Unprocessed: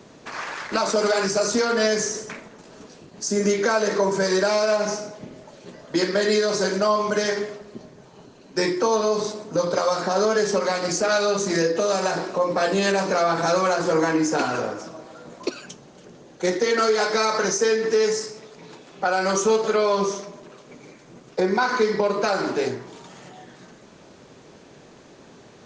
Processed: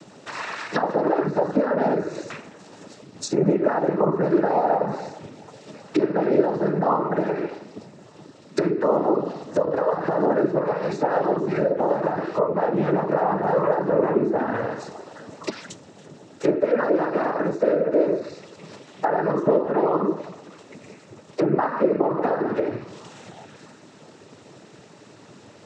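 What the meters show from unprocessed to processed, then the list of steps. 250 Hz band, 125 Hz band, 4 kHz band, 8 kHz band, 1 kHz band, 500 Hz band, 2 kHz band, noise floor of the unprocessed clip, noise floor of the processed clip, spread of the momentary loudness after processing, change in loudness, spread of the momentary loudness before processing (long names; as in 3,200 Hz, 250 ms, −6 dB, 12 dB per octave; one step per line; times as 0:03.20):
+2.5 dB, +3.5 dB, below −10 dB, below −15 dB, 0.0 dB, −0.5 dB, −7.0 dB, −49 dBFS, −49 dBFS, 16 LU, −0.5 dB, 13 LU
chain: cochlear-implant simulation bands 12
treble cut that deepens with the level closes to 1,000 Hz, closed at −19.5 dBFS
level +1.5 dB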